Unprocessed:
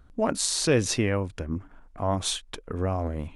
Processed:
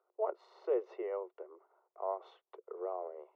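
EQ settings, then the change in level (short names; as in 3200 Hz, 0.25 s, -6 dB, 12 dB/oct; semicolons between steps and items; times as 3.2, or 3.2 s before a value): polynomial smoothing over 65 samples; Chebyshev high-pass 360 Hz, order 8; air absorption 290 m; -6.5 dB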